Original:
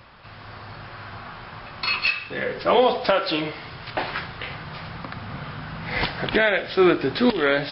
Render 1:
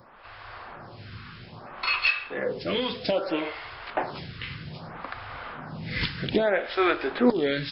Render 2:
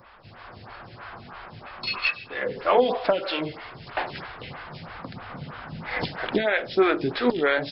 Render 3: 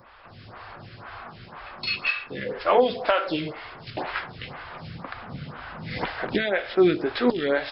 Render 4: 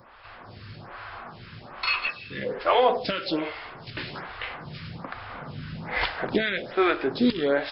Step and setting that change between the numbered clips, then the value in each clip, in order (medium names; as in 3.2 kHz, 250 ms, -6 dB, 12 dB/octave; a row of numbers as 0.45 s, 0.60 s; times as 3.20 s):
lamp-driven phase shifter, rate: 0.62 Hz, 3.1 Hz, 2 Hz, 1.2 Hz